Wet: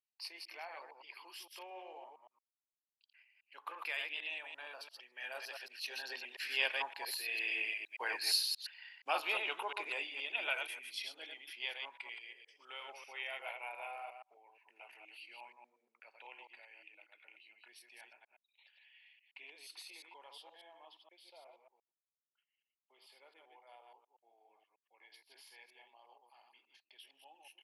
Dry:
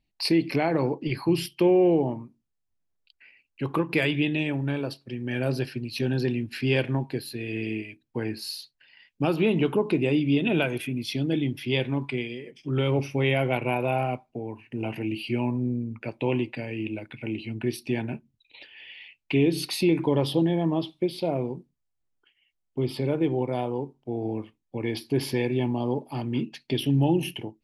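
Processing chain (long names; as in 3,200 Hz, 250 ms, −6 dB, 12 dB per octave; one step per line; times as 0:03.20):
delay that plays each chunk backwards 116 ms, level −4 dB
source passing by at 0:08.10, 7 m/s, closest 5.2 metres
high-pass filter 780 Hz 24 dB per octave
level +3 dB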